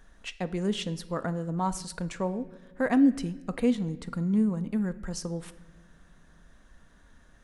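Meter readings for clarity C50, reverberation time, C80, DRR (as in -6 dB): 16.5 dB, 1.1 s, 18.5 dB, 11.0 dB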